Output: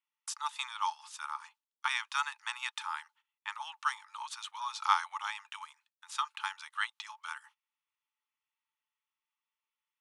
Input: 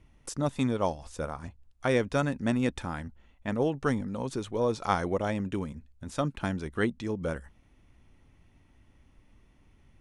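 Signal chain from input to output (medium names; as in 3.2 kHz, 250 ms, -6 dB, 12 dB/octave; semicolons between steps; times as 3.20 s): gate -49 dBFS, range -23 dB; rippled Chebyshev high-pass 850 Hz, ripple 6 dB; trim +5 dB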